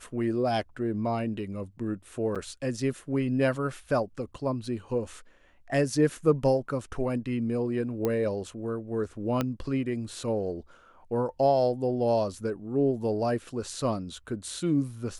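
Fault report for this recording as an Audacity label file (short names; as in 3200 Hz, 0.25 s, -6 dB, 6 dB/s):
2.350000	2.360000	gap 6.6 ms
8.050000	8.050000	pop -15 dBFS
9.410000	9.410000	pop -13 dBFS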